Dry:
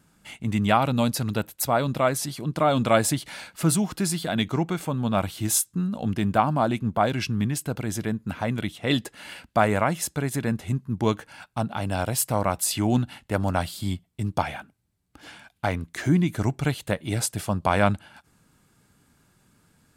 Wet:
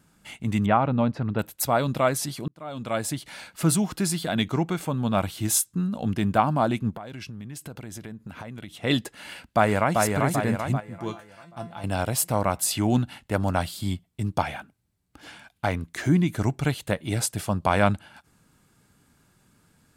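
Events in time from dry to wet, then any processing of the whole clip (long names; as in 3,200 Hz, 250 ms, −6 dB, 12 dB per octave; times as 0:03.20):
0:00.66–0:01.39: low-pass filter 1,700 Hz
0:02.48–0:03.65: fade in
0:06.90–0:08.77: downward compressor 12 to 1, threshold −34 dBFS
0:09.28–0:09.94: delay throw 390 ms, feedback 55%, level −3 dB
0:10.80–0:11.84: tuned comb filter 170 Hz, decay 0.26 s, mix 80%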